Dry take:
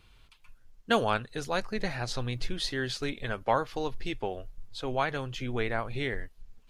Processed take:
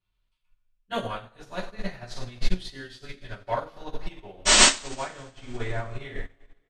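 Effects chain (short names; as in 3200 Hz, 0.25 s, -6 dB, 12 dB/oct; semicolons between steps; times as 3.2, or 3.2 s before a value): 5.25–5.99 high shelf 7200 Hz -10.5 dB; in parallel at -2 dB: limiter -24 dBFS, peak gain reduction 12 dB; 4.45–4.68 on the sum: painted sound noise 200–8700 Hz -17 dBFS; on a send: feedback echo 96 ms, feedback 50%, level -15.5 dB; on the sum: two-slope reverb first 0.39 s, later 2.7 s, from -17 dB, DRR -8.5 dB; upward expander 2.5:1, over -27 dBFS; gain -5 dB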